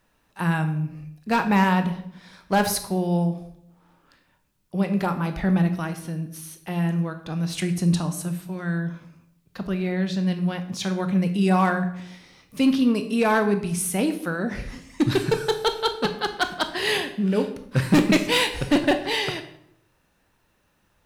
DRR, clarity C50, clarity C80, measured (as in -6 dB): 8.0 dB, 11.0 dB, 14.0 dB